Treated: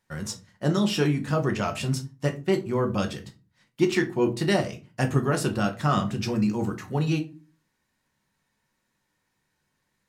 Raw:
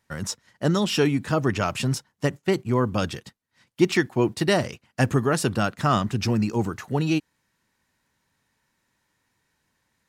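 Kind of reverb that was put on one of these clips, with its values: shoebox room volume 140 m³, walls furnished, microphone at 0.96 m; gain -4.5 dB

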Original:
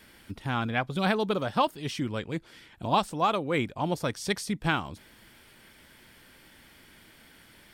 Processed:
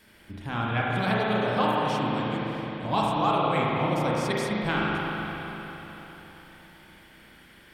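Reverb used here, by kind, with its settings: spring tank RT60 4 s, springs 33/43 ms, chirp 50 ms, DRR -5.5 dB; gain -3.5 dB

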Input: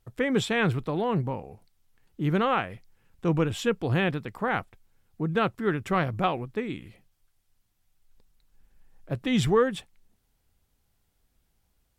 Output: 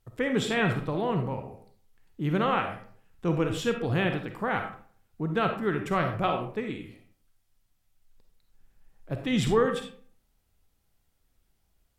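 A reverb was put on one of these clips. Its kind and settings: digital reverb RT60 0.5 s, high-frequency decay 0.6×, pre-delay 10 ms, DRR 4.5 dB; gain -2 dB

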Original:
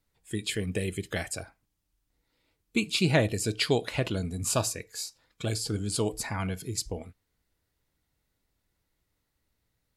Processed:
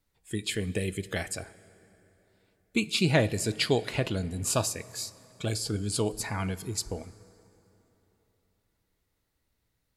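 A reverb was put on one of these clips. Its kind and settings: plate-style reverb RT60 3.6 s, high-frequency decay 0.6×, DRR 17.5 dB

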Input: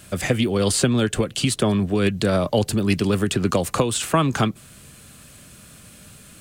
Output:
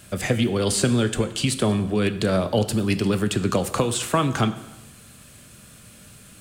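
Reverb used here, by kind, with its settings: plate-style reverb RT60 0.98 s, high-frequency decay 0.9×, DRR 10 dB; gain -2 dB

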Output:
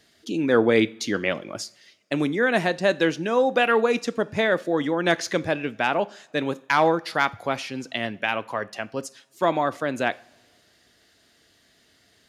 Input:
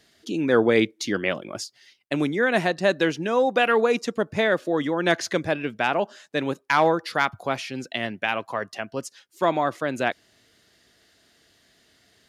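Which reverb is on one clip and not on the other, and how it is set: two-slope reverb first 0.41 s, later 1.8 s, from -19 dB, DRR 16 dB

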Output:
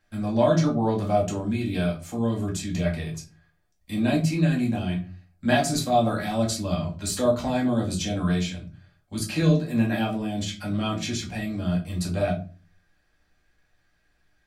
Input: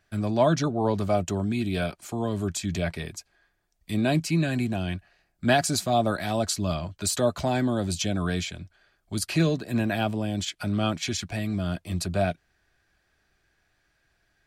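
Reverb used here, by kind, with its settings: shoebox room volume 170 m³, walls furnished, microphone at 2.2 m; gain -5 dB

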